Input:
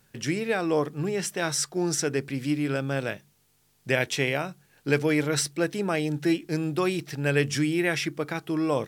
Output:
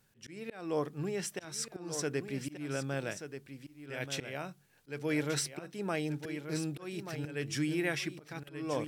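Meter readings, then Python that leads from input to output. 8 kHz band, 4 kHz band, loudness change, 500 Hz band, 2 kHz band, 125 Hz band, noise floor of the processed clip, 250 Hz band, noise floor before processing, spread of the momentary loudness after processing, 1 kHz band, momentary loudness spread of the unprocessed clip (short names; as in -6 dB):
-8.5 dB, -9.0 dB, -10.0 dB, -10.0 dB, -11.0 dB, -9.5 dB, -65 dBFS, -10.0 dB, -66 dBFS, 12 LU, -10.0 dB, 6 LU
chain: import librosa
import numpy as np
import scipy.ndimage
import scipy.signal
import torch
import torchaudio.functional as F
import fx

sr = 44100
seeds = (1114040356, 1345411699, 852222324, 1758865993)

y = fx.auto_swell(x, sr, attack_ms=281.0)
y = y + 10.0 ** (-9.5 / 20.0) * np.pad(y, (int(1182 * sr / 1000.0), 0))[:len(y)]
y = y * 10.0 ** (-7.5 / 20.0)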